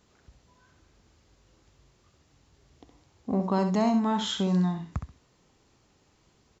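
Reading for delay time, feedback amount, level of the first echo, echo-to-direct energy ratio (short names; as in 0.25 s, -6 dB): 66 ms, 18%, -8.0 dB, -8.0 dB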